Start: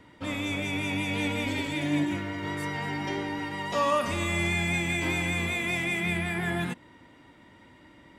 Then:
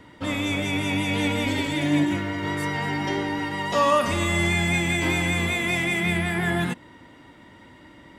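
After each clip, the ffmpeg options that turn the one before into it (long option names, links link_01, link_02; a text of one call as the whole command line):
ffmpeg -i in.wav -af "bandreject=frequency=2400:width=20,volume=5.5dB" out.wav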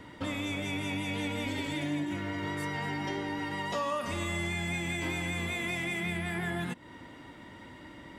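ffmpeg -i in.wav -af "acompressor=threshold=-34dB:ratio=3" out.wav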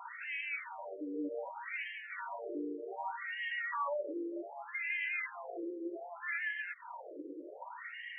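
ffmpeg -i in.wav -af "acompressor=threshold=-38dB:ratio=10,afftfilt=real='re*between(b*sr/1024,370*pow(2300/370,0.5+0.5*sin(2*PI*0.65*pts/sr))/1.41,370*pow(2300/370,0.5+0.5*sin(2*PI*0.65*pts/sr))*1.41)':imag='im*between(b*sr/1024,370*pow(2300/370,0.5+0.5*sin(2*PI*0.65*pts/sr))/1.41,370*pow(2300/370,0.5+0.5*sin(2*PI*0.65*pts/sr))*1.41)':win_size=1024:overlap=0.75,volume=9.5dB" out.wav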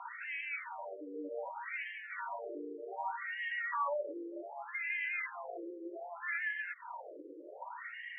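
ffmpeg -i in.wav -af "highpass=470,lowpass=2300,volume=2dB" out.wav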